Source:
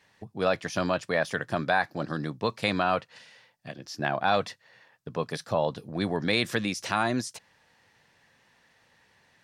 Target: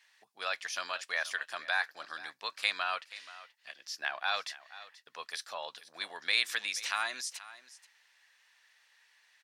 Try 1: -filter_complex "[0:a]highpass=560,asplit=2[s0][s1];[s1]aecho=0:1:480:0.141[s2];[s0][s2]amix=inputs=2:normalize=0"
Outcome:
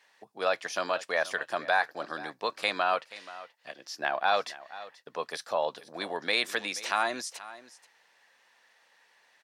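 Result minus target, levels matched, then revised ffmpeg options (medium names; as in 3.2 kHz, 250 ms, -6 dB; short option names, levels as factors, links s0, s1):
500 Hz band +11.0 dB
-filter_complex "[0:a]highpass=1600,asplit=2[s0][s1];[s1]aecho=0:1:480:0.141[s2];[s0][s2]amix=inputs=2:normalize=0"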